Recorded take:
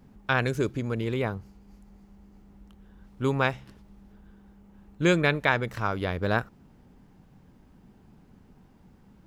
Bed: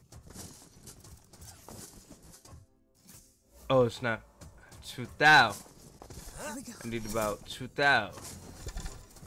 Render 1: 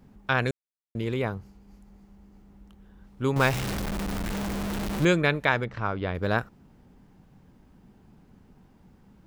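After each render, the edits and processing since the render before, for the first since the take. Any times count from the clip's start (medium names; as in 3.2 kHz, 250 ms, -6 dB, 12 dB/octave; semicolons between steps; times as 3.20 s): 0.51–0.95 s: mute; 3.36–5.05 s: jump at every zero crossing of -24.5 dBFS; 5.64–6.15 s: distance through air 180 m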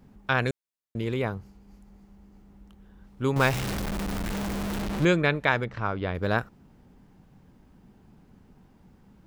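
4.82–5.47 s: treble shelf 7.3 kHz -7.5 dB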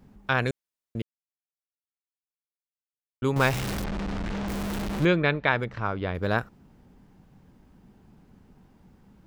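1.02–3.22 s: mute; 3.84–4.48 s: distance through air 120 m; 5.06–5.59 s: low-pass 4.7 kHz 24 dB/octave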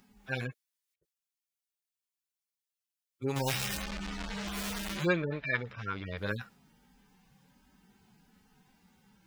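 harmonic-percussive separation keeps harmonic; tilt shelf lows -8.5 dB, about 1.1 kHz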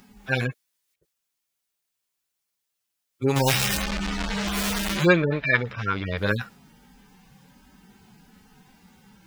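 trim +10.5 dB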